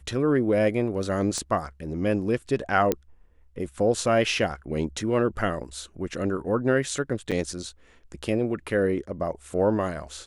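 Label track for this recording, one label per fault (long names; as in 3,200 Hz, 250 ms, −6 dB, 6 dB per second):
1.380000	1.380000	click −18 dBFS
2.920000	2.920000	click −9 dBFS
7.310000	7.320000	drop-out 6.9 ms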